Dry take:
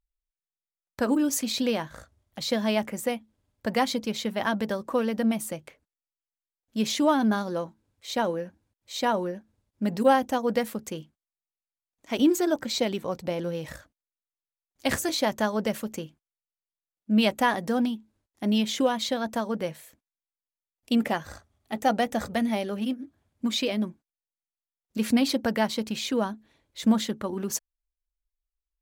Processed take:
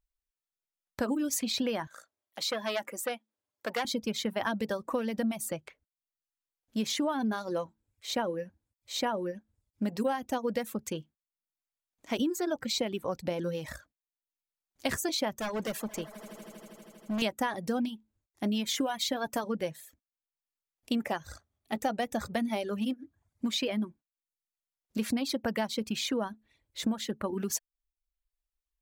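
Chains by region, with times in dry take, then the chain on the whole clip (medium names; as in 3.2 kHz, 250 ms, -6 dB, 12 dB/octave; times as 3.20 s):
1.87–3.85 s: high-pass 410 Hz + transformer saturation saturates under 1.9 kHz
15.36–17.22 s: tone controls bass -4 dB, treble +1 dB + overload inside the chain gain 29 dB + echo with a slow build-up 80 ms, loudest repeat 5, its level -18 dB
18.66–19.44 s: treble shelf 10 kHz +8.5 dB + comb 6.9 ms, depth 47%
whole clip: reverb removal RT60 0.6 s; compression 6:1, threshold -27 dBFS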